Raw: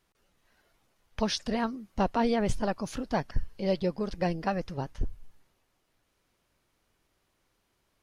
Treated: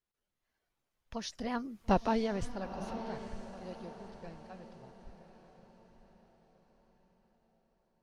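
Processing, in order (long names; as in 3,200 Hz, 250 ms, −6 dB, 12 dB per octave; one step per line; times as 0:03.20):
source passing by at 0:01.87, 18 m/s, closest 3.6 metres
feedback delay with all-pass diffusion 935 ms, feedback 42%, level −10.5 dB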